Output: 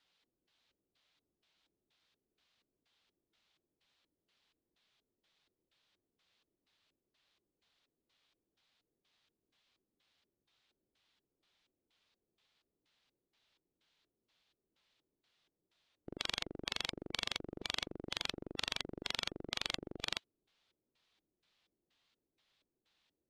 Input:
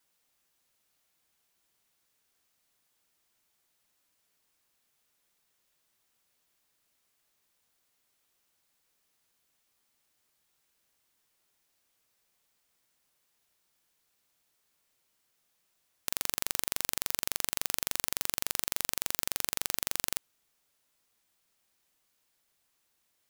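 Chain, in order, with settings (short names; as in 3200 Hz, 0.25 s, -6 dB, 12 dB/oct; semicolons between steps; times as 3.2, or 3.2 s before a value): LFO low-pass square 2.1 Hz 360–3700 Hz; formant-preserving pitch shift -1 st; gain -1 dB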